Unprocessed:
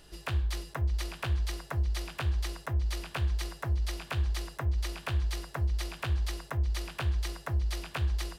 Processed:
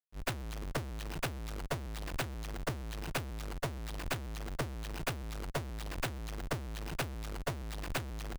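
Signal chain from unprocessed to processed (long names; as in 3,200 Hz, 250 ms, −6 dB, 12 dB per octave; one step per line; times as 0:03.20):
comparator with hysteresis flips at −43 dBFS
noise gate −29 dBFS, range −37 dB
level +14 dB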